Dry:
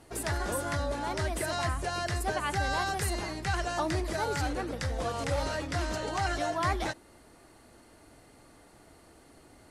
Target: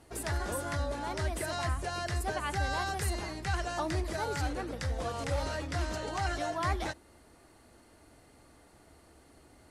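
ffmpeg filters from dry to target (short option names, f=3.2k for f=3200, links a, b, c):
-af "equalizer=f=72:t=o:w=0.3:g=7.5,volume=-3dB"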